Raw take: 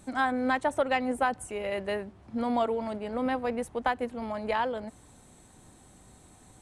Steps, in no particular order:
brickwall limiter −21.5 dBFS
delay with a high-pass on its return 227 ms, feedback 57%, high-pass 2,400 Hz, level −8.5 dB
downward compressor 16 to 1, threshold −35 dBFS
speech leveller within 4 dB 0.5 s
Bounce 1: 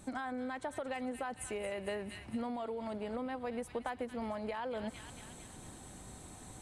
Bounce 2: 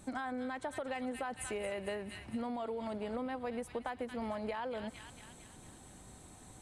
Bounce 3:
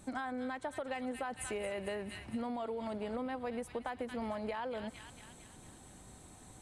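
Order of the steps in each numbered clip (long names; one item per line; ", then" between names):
brickwall limiter, then delay with a high-pass on its return, then downward compressor, then speech leveller
delay with a high-pass on its return, then brickwall limiter, then speech leveller, then downward compressor
delay with a high-pass on its return, then speech leveller, then brickwall limiter, then downward compressor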